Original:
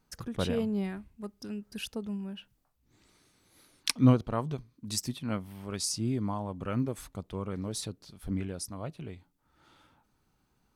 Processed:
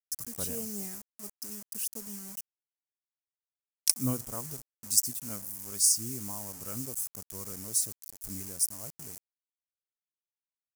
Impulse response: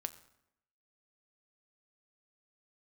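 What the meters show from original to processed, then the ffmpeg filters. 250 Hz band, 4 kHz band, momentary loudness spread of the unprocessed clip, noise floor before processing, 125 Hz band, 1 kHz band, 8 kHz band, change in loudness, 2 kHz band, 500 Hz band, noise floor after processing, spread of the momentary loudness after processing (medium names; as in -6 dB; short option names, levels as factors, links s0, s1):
-10.0 dB, 0.0 dB, 14 LU, -73 dBFS, -10.5 dB, -10.0 dB, +11.0 dB, +2.0 dB, -9.0 dB, -10.0 dB, under -85 dBFS, 16 LU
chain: -filter_complex "[0:a]asplit=2[s0][s1];[1:a]atrim=start_sample=2205[s2];[s1][s2]afir=irnorm=-1:irlink=0,volume=0.376[s3];[s0][s3]amix=inputs=2:normalize=0,acrusher=bits=6:mix=0:aa=0.000001,aexciter=amount=11:drive=5.9:freq=5400,volume=0.237"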